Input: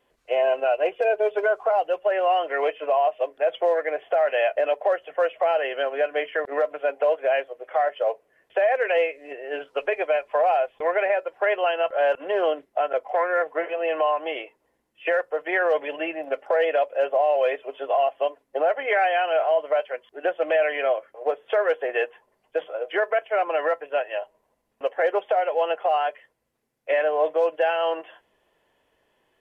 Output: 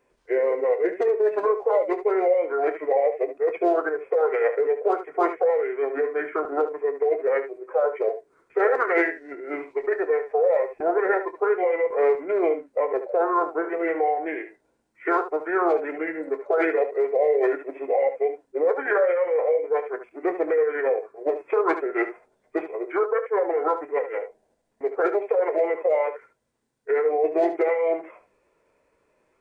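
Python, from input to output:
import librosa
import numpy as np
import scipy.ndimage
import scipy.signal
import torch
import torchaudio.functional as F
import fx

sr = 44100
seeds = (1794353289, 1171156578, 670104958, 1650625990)

y = fx.peak_eq(x, sr, hz=940.0, db=5.5, octaves=0.24)
y = fx.formant_shift(y, sr, semitones=-5)
y = fx.room_early_taps(y, sr, ms=(26, 73), db=(-13.5, -11.0))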